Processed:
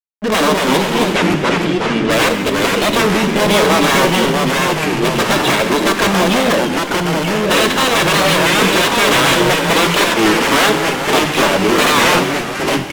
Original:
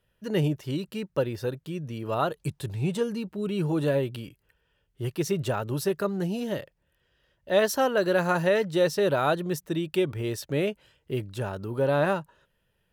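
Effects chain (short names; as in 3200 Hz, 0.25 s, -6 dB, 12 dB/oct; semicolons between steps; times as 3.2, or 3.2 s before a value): wrapped overs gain 23 dB; comb 1.8 ms, depth 31%; level quantiser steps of 10 dB; FFT band-pass 180–4000 Hz; fuzz box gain 45 dB, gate -52 dBFS; 0.77–2.1 air absorption 66 m; echoes that change speed 0.188 s, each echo -2 st, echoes 3; on a send at -6.5 dB: reverb, pre-delay 3 ms; on the sum: record warp 33 1/3 rpm, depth 160 cents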